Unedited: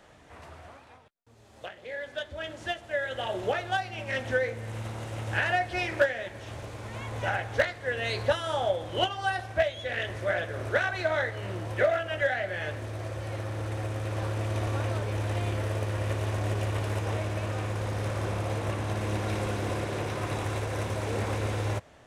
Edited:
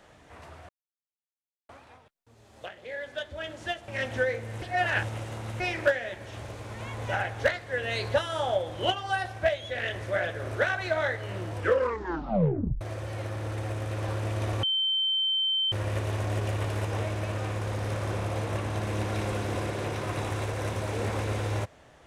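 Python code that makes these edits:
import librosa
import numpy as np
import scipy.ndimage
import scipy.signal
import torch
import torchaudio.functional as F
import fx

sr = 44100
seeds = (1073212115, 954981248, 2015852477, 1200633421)

y = fx.edit(x, sr, fx.insert_silence(at_s=0.69, length_s=1.0),
    fx.cut(start_s=2.88, length_s=1.14),
    fx.reverse_span(start_s=4.76, length_s=0.98),
    fx.tape_stop(start_s=11.67, length_s=1.28),
    fx.bleep(start_s=14.77, length_s=1.09, hz=3100.0, db=-23.5), tone=tone)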